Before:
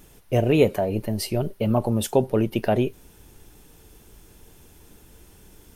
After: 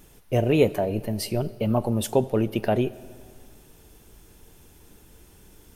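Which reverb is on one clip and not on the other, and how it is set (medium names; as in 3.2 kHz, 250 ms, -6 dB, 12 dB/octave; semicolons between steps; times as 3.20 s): algorithmic reverb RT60 2.1 s, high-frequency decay 0.75×, pre-delay 25 ms, DRR 18.5 dB; trim -1.5 dB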